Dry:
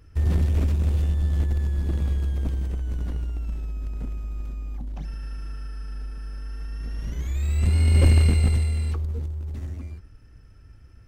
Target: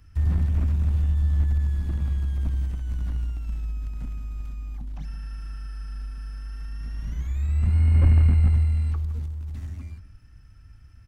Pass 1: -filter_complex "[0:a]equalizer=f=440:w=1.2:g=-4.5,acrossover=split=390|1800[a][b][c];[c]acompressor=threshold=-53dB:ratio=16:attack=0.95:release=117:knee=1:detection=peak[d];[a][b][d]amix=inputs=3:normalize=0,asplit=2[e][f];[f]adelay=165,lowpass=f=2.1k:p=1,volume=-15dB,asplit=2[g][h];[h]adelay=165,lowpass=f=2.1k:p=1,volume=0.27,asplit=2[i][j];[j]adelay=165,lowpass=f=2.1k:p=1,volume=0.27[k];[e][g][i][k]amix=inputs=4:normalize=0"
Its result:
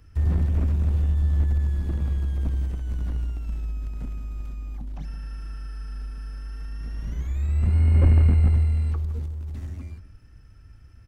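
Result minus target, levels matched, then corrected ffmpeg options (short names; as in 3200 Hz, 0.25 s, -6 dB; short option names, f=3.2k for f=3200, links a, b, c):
500 Hz band +6.0 dB
-filter_complex "[0:a]equalizer=f=440:w=1.2:g=-12.5,acrossover=split=390|1800[a][b][c];[c]acompressor=threshold=-53dB:ratio=16:attack=0.95:release=117:knee=1:detection=peak[d];[a][b][d]amix=inputs=3:normalize=0,asplit=2[e][f];[f]adelay=165,lowpass=f=2.1k:p=1,volume=-15dB,asplit=2[g][h];[h]adelay=165,lowpass=f=2.1k:p=1,volume=0.27,asplit=2[i][j];[j]adelay=165,lowpass=f=2.1k:p=1,volume=0.27[k];[e][g][i][k]amix=inputs=4:normalize=0"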